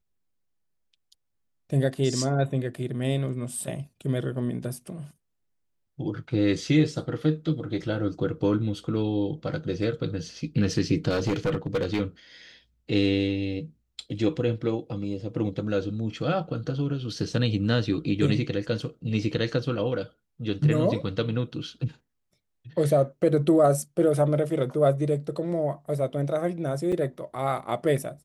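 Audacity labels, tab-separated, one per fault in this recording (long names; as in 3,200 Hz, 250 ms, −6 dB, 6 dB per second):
11.090000	12.000000	clipping −20.5 dBFS
26.920000	26.930000	drop-out 5.6 ms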